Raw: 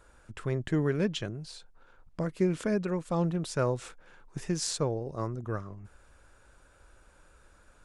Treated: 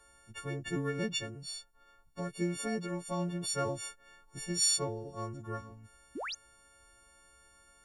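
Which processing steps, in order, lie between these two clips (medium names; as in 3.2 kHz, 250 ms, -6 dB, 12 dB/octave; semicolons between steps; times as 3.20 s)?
partials quantised in pitch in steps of 4 st; painted sound rise, 6.15–6.35 s, 220–7100 Hz -32 dBFS; trim -6.5 dB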